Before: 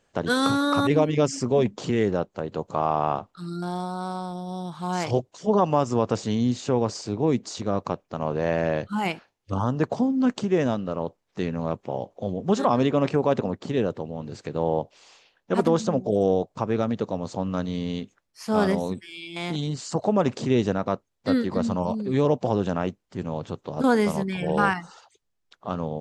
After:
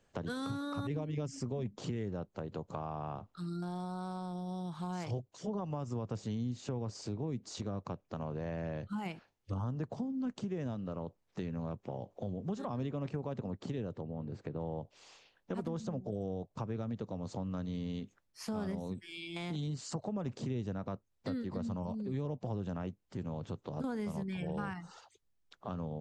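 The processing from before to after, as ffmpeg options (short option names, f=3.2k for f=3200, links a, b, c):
-filter_complex "[0:a]asplit=3[a][b][c];[a]afade=t=out:st=14:d=0.02[d];[b]equalizer=f=7.4k:w=0.38:g=-15,afade=t=in:st=14:d=0.02,afade=t=out:st=14.59:d=0.02[e];[c]afade=t=in:st=14.59:d=0.02[f];[d][e][f]amix=inputs=3:normalize=0,acrossover=split=170[g][h];[h]acompressor=threshold=-32dB:ratio=2[i];[g][i]amix=inputs=2:normalize=0,lowshelf=f=220:g=6.5,acompressor=threshold=-34dB:ratio=2,volume=-5.5dB"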